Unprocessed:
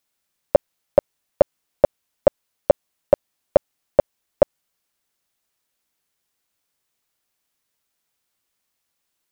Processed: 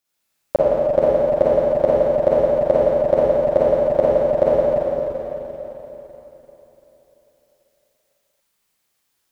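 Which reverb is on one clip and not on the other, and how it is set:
four-comb reverb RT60 3.8 s, DRR −9.5 dB
level −4 dB

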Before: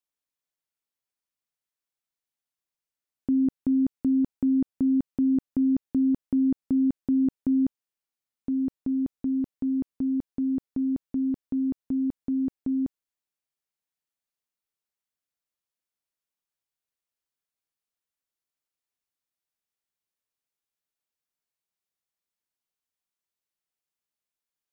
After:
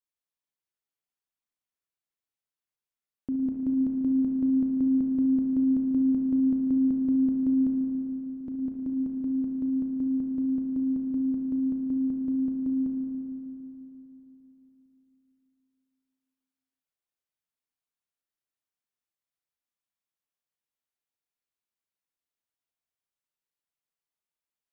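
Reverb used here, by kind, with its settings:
spring reverb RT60 3.6 s, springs 35/57 ms, chirp 60 ms, DRR 0 dB
level −6 dB

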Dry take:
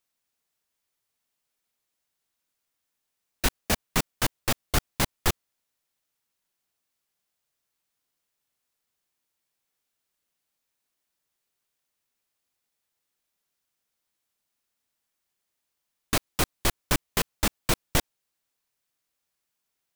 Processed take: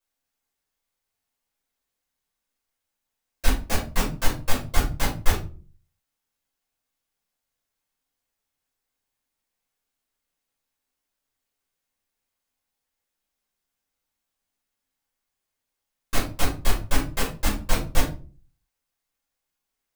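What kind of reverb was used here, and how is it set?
rectangular room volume 210 cubic metres, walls furnished, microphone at 5.3 metres
level −10.5 dB

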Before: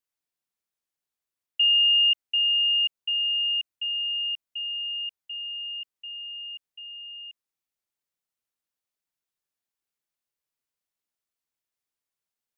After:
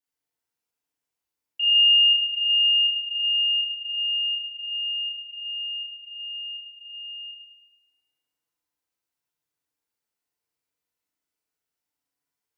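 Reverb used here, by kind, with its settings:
feedback delay network reverb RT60 2.3 s, low-frequency decay 0.8×, high-frequency decay 0.5×, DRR −8.5 dB
level −5.5 dB

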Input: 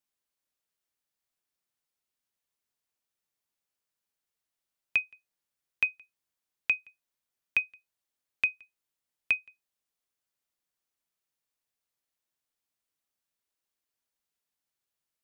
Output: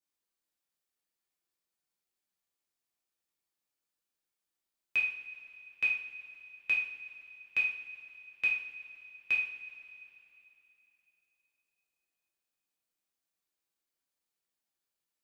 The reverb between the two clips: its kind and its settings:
coupled-rooms reverb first 0.55 s, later 3.3 s, from −17 dB, DRR −6 dB
level −8.5 dB

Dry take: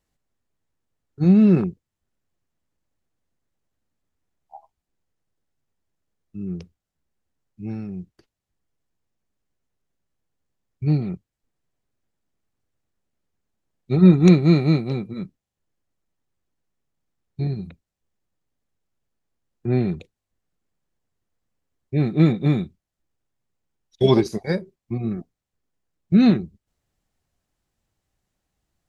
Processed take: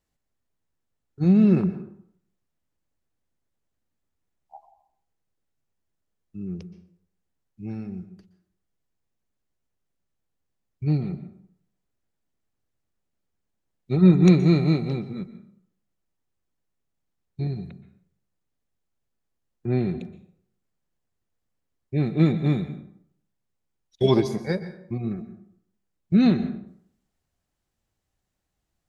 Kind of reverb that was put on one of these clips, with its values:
dense smooth reverb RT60 0.65 s, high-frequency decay 0.65×, pre-delay 110 ms, DRR 12 dB
level −3 dB

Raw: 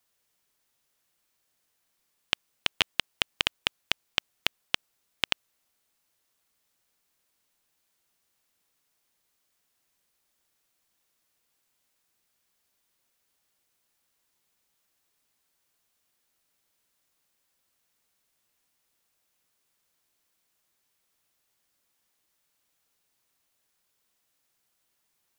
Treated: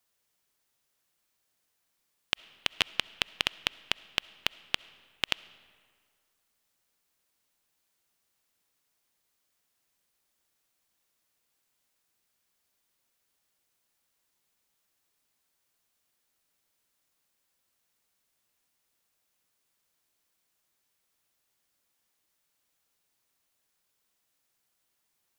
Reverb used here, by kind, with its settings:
comb and all-pass reverb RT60 1.9 s, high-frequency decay 0.7×, pre-delay 25 ms, DRR 20 dB
level −2 dB

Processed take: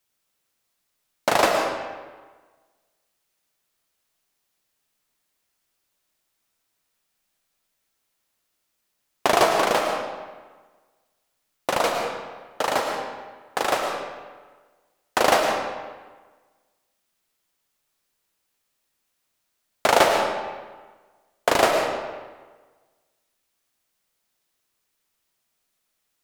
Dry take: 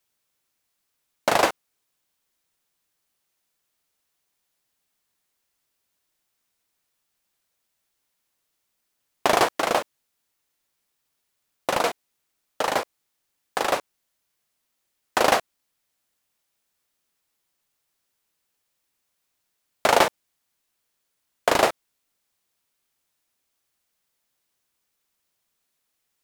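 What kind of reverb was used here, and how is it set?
comb and all-pass reverb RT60 1.4 s, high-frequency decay 0.75×, pre-delay 70 ms, DRR 2.5 dB

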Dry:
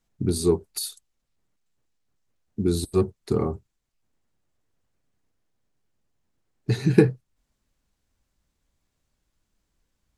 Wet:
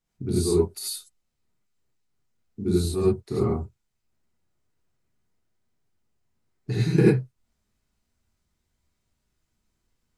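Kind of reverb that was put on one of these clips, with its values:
reverb whose tail is shaped and stops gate 120 ms rising, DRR −7 dB
level −8 dB

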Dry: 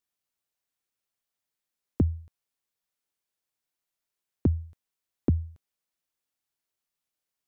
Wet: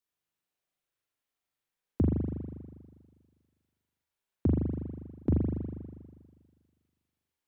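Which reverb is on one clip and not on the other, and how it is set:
spring reverb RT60 1.7 s, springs 40 ms, chirp 35 ms, DRR −4 dB
level −4 dB

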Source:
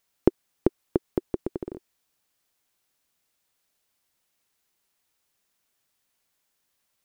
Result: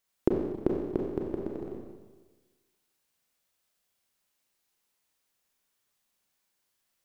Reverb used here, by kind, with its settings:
four-comb reverb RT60 1.3 s, combs from 30 ms, DRR −1 dB
level −6 dB

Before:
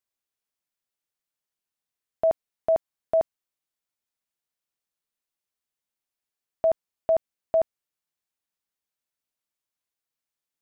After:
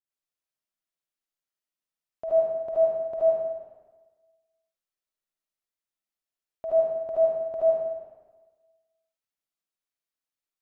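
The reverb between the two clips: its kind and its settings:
comb and all-pass reverb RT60 1.3 s, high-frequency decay 0.85×, pre-delay 30 ms, DRR −8.5 dB
level −12.5 dB

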